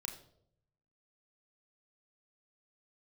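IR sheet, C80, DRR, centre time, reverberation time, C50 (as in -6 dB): 12.5 dB, 1.5 dB, 20 ms, 0.70 s, 10.0 dB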